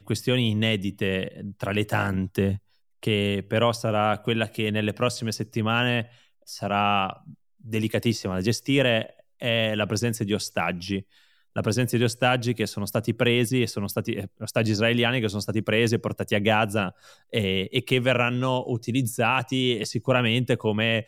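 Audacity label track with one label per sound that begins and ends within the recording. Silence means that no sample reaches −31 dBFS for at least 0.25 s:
3.030000	6.030000	sound
6.500000	7.130000	sound
7.700000	9.060000	sound
9.420000	11.000000	sound
11.560000	16.890000	sound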